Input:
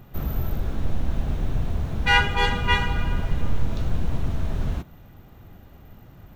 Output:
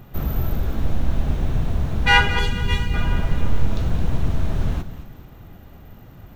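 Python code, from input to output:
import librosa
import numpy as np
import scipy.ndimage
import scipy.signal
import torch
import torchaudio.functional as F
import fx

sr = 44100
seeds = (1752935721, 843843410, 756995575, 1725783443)

p1 = fx.peak_eq(x, sr, hz=1100.0, db=-14.0, octaves=2.6, at=(2.39, 2.94))
p2 = p1 + fx.echo_feedback(p1, sr, ms=217, feedback_pct=43, wet_db=-13.0, dry=0)
y = p2 * librosa.db_to_amplitude(3.5)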